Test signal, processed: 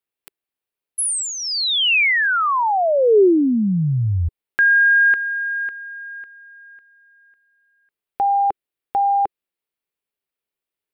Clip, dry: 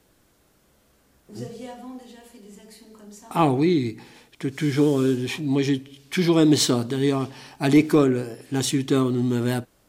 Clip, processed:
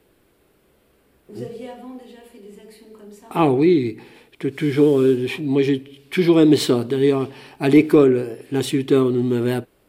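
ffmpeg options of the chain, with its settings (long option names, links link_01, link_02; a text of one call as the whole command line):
ffmpeg -i in.wav -af "equalizer=frequency=400:width_type=o:width=0.67:gain=8,equalizer=frequency=2500:width_type=o:width=0.67:gain=4,equalizer=frequency=6300:width_type=o:width=0.67:gain=-10" out.wav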